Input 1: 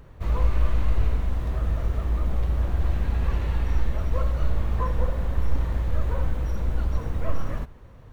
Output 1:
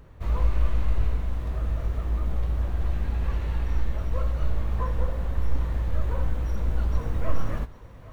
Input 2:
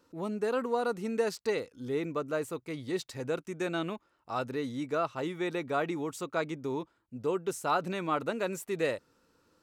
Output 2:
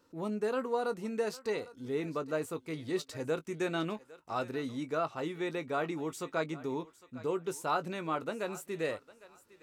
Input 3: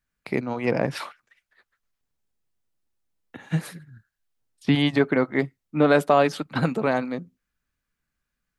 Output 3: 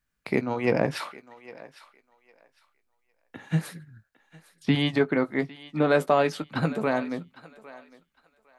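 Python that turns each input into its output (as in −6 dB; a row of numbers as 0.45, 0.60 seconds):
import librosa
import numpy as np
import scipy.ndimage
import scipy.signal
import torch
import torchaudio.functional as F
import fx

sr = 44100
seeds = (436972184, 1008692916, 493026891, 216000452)

p1 = fx.rider(x, sr, range_db=5, speed_s=2.0)
p2 = fx.doubler(p1, sr, ms=19.0, db=-12.0)
p3 = p2 + fx.echo_thinned(p2, sr, ms=806, feedback_pct=23, hz=560.0, wet_db=-17, dry=0)
y = p3 * 10.0 ** (-3.0 / 20.0)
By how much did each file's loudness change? −1.5, −2.5, −2.5 LU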